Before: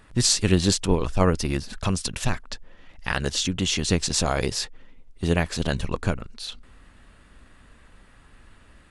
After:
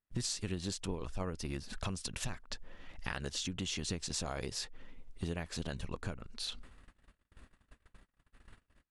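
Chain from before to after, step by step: compression 5:1, threshold -34 dBFS, peak gain reduction 18.5 dB; gate -47 dBFS, range -39 dB; trim -2 dB

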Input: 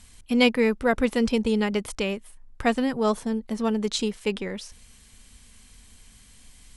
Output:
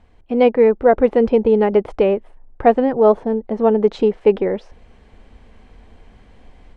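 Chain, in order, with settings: low-pass 1.7 kHz 12 dB/octave; high-order bell 520 Hz +9 dB; level rider gain up to 7.5 dB

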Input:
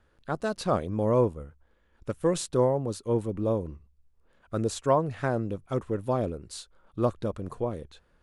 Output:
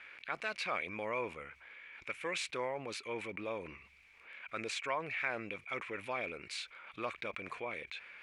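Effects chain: band-pass filter 2.3 kHz, Q 12; level flattener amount 50%; trim +16 dB

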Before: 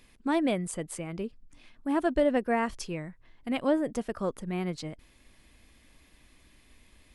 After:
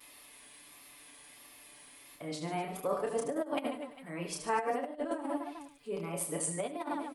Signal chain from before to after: reverse the whole clip; high-order bell 3.2 kHz -8 dB 2.7 oct; on a send: reverse bouncing-ball echo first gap 30 ms, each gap 1.5×, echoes 5; on the sum: vibrato 1.5 Hz 61 cents; comb 6.9 ms, depth 66%; compressor with a negative ratio -27 dBFS, ratio -0.5; high-pass 730 Hz 6 dB/octave; delay 101 ms -14.5 dB; tape noise reduction on one side only encoder only

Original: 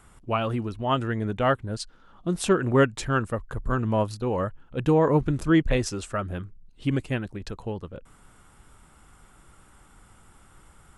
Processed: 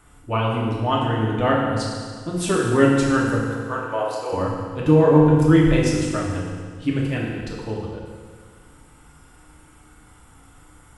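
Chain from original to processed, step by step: 3.40–4.33 s: high-pass 460 Hz 24 dB/octave; FDN reverb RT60 1.8 s, low-frequency decay 1.1×, high-frequency decay 0.95×, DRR -4 dB; trim -1 dB

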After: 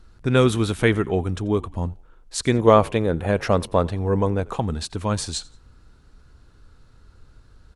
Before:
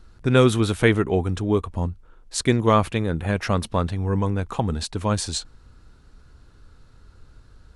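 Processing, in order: 2.54–4.56 s: peaking EQ 540 Hz +8 dB 1.4 oct; frequency-shifting echo 87 ms, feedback 35%, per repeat -67 Hz, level -23 dB; trim -1 dB

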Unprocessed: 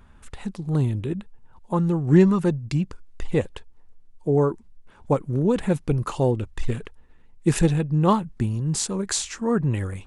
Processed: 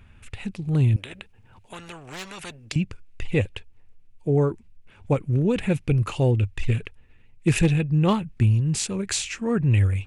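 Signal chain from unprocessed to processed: fifteen-band graphic EQ 100 Hz +12 dB, 1 kHz -5 dB, 2.5 kHz +12 dB; hard clipper -8.5 dBFS, distortion -23 dB; 0.96–2.76 s: spectrum-flattening compressor 4:1; trim -2 dB

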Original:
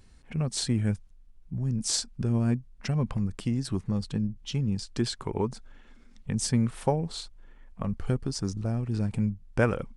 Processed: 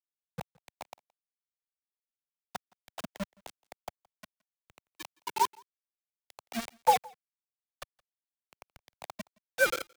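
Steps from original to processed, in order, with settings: formants replaced by sine waves; resonant low shelf 530 Hz -10 dB, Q 3; bit crusher 5-bit; delay 170 ms -23.5 dB; three bands expanded up and down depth 100%; trim -6.5 dB

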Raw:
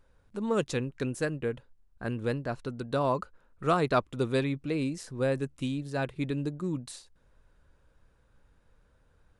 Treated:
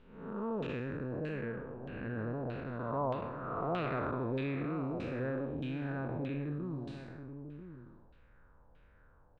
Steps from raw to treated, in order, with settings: spectral blur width 360 ms; in parallel at 0 dB: compression, threshold -44 dBFS, peak gain reduction 15.5 dB; on the sum: echo from a far wall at 170 m, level -10 dB; saturation -23 dBFS, distortion -22 dB; LFO low-pass saw down 1.6 Hz 750–3100 Hz; trim -4 dB

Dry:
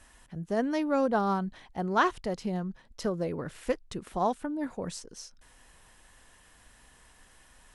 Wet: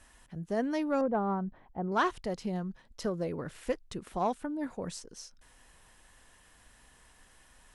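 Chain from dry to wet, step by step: 1.01–1.92 s: low-pass 1.1 kHz 12 dB/octave; in parallel at -8 dB: sine folder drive 4 dB, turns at -12.5 dBFS; on the sum: trim -8 dB

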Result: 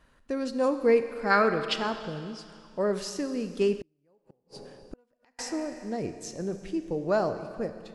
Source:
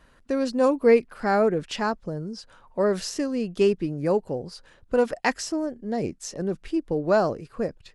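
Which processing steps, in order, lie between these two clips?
1.31–1.73 s: time-frequency box 990–5400 Hz +12 dB; Schroeder reverb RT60 2.2 s, combs from 28 ms, DRR 9 dB; 3.80–5.39 s: inverted gate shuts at -23 dBFS, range -39 dB; trim -5 dB

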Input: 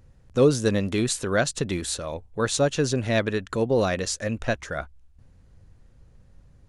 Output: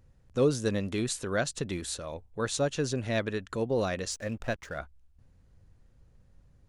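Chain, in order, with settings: 4.11–4.79 s: hysteresis with a dead band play -40.5 dBFS; trim -6.5 dB

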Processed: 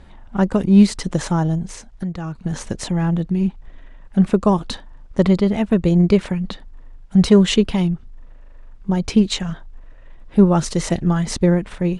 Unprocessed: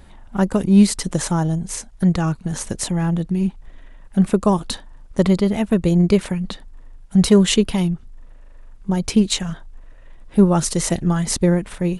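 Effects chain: 1.68–2.35 s: compression 2.5:1, threshold -29 dBFS, peak gain reduction 11.5 dB; distance through air 80 m; trim +1 dB

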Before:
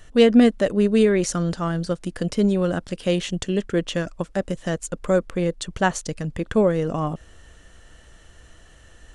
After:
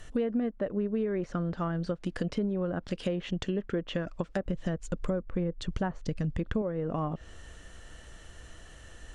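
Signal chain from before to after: low-pass that closes with the level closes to 1.6 kHz, closed at -18.5 dBFS; 4.46–6.62 s: bass shelf 220 Hz +10 dB; compression 6:1, threshold -28 dBFS, peak gain reduction 17 dB

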